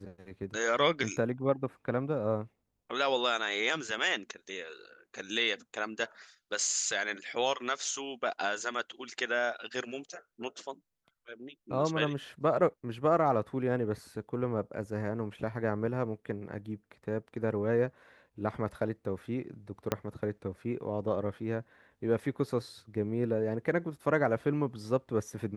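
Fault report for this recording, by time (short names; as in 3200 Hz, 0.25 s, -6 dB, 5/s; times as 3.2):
19.92 pop -13 dBFS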